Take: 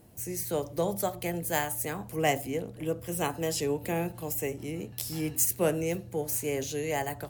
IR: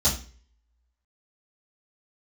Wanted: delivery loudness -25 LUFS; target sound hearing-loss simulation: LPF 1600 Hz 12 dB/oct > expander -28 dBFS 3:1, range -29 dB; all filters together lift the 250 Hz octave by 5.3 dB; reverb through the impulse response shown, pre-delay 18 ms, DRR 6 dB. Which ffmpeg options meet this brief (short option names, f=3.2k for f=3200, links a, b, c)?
-filter_complex "[0:a]equalizer=f=250:t=o:g=8,asplit=2[a][b];[1:a]atrim=start_sample=2205,adelay=18[c];[b][c]afir=irnorm=-1:irlink=0,volume=-17.5dB[d];[a][d]amix=inputs=2:normalize=0,lowpass=1.6k,agate=range=-29dB:threshold=-28dB:ratio=3,volume=3dB"